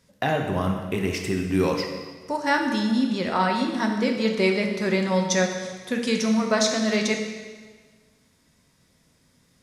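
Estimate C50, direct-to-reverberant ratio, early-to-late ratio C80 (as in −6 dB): 5.0 dB, 2.0 dB, 6.5 dB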